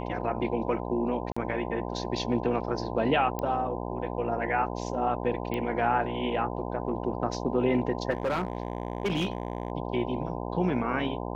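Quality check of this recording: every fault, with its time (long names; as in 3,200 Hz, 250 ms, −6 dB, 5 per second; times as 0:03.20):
mains buzz 60 Hz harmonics 17 −34 dBFS
0:01.32–0:01.36: drop-out 45 ms
0:03.39: click −18 dBFS
0:05.54: click −19 dBFS
0:08.10–0:09.72: clipping −23.5 dBFS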